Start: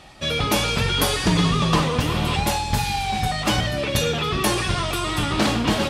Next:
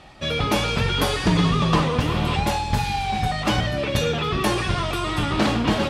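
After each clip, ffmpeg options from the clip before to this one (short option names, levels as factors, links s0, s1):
-af "aemphasis=mode=reproduction:type=cd"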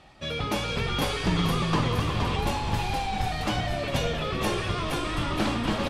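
-filter_complex "[0:a]asplit=8[s0][s1][s2][s3][s4][s5][s6][s7];[s1]adelay=469,afreqshift=-56,volume=0.631[s8];[s2]adelay=938,afreqshift=-112,volume=0.335[s9];[s3]adelay=1407,afreqshift=-168,volume=0.178[s10];[s4]adelay=1876,afreqshift=-224,volume=0.0944[s11];[s5]adelay=2345,afreqshift=-280,volume=0.0495[s12];[s6]adelay=2814,afreqshift=-336,volume=0.0263[s13];[s7]adelay=3283,afreqshift=-392,volume=0.014[s14];[s0][s8][s9][s10][s11][s12][s13][s14]amix=inputs=8:normalize=0,volume=0.447"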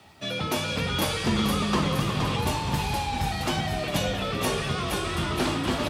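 -af "afreqshift=41,crystalizer=i=1:c=0,acrusher=bits=10:mix=0:aa=0.000001"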